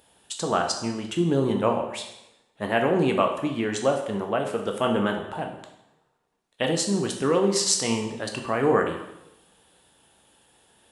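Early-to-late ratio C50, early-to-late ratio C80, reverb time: 6.5 dB, 9.0 dB, 0.85 s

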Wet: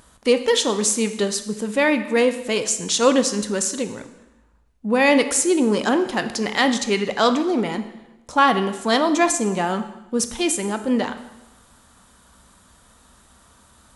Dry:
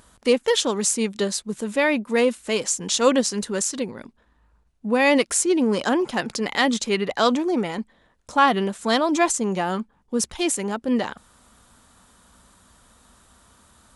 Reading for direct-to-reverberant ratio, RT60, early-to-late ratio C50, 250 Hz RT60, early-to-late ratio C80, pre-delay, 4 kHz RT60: 9.0 dB, 1.0 s, 11.0 dB, 1.0 s, 13.0 dB, 7 ms, 0.90 s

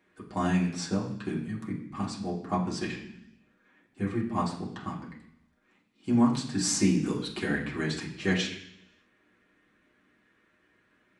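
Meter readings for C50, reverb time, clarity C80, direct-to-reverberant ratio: 7.5 dB, 0.70 s, 10.5 dB, -5.0 dB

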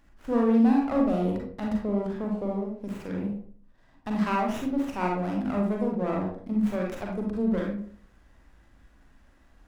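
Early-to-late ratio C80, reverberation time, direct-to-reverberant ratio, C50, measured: 8.0 dB, 0.50 s, -1.5 dB, 2.5 dB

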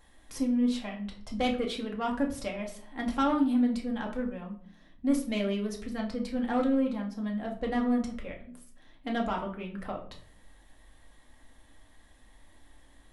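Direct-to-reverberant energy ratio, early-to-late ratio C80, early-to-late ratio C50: -0.5 dB, 14.0 dB, 10.0 dB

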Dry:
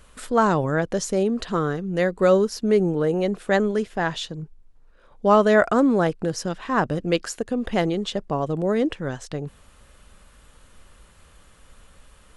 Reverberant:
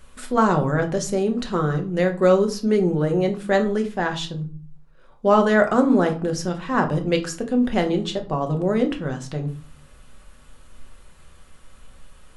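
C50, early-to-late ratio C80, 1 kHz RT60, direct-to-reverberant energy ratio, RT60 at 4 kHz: 13.0 dB, 18.0 dB, 0.45 s, 4.0 dB, 0.25 s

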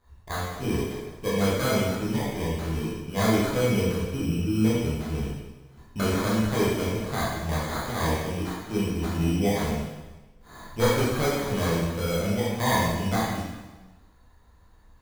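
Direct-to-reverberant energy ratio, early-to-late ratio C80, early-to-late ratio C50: -8.5 dB, 1.5 dB, -1.0 dB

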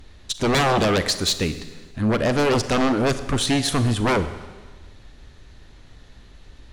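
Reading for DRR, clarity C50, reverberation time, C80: 11.0 dB, 12.0 dB, 1.4 s, 14.0 dB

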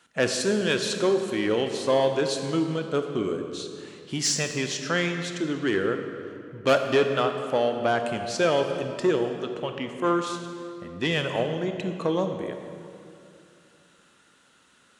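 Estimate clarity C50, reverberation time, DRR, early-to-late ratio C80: 6.0 dB, 2.6 s, 5.5 dB, 7.0 dB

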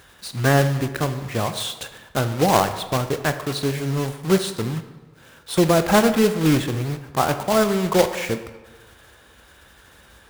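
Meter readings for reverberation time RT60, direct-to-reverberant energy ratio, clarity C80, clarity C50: 1.3 s, 9.0 dB, 12.5 dB, 10.5 dB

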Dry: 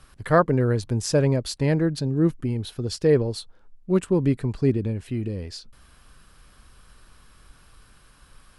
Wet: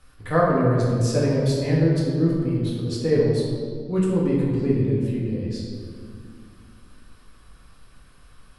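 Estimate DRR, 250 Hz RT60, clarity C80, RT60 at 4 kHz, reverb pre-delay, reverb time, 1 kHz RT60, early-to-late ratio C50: -5.5 dB, 3.1 s, 2.5 dB, 1.3 s, 4 ms, 2.1 s, 1.8 s, 0.0 dB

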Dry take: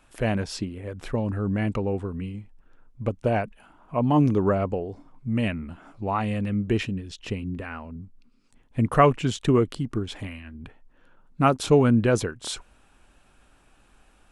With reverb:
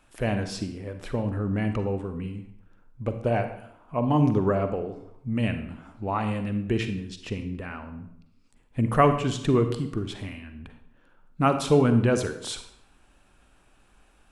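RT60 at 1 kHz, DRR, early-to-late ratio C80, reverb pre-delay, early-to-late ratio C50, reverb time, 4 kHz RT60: 0.70 s, 8.0 dB, 12.0 dB, 39 ms, 9.0 dB, 0.70 s, 0.60 s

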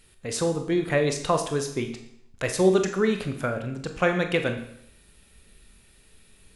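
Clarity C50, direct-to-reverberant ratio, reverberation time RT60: 9.0 dB, 5.0 dB, 0.75 s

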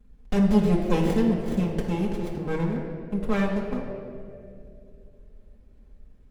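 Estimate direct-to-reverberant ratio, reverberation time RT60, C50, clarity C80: -4.0 dB, 2.6 s, 3.5 dB, 5.0 dB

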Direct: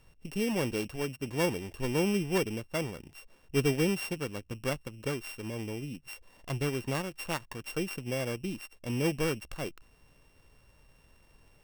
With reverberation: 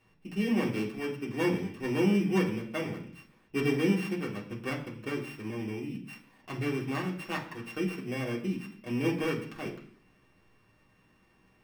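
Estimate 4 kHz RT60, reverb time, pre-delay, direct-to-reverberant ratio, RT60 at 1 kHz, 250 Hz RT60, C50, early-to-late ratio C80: 0.70 s, 0.55 s, 3 ms, -4.5 dB, 0.55 s, 0.70 s, 9.5 dB, 12.5 dB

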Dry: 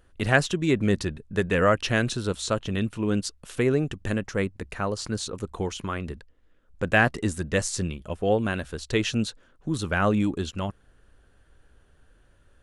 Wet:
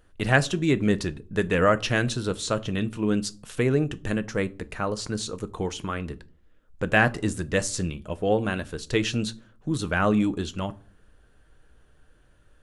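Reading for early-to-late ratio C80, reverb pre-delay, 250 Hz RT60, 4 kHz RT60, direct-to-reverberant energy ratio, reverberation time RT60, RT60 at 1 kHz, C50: 27.5 dB, 6 ms, 0.60 s, 0.25 s, 11.5 dB, 0.45 s, 0.40 s, 23.0 dB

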